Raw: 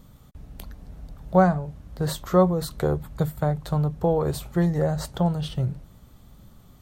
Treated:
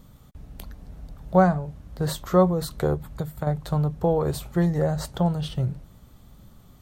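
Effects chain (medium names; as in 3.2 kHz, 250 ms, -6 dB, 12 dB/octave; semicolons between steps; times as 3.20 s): 2.94–3.47 s: compression 6:1, threshold -26 dBFS, peak gain reduction 8 dB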